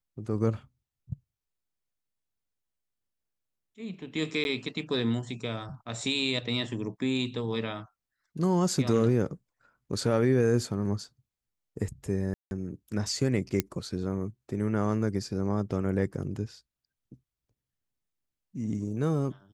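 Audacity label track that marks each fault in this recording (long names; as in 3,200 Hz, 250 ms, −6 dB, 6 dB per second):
4.440000	4.450000	drop-out 11 ms
12.340000	12.510000	drop-out 171 ms
13.600000	13.600000	click −10 dBFS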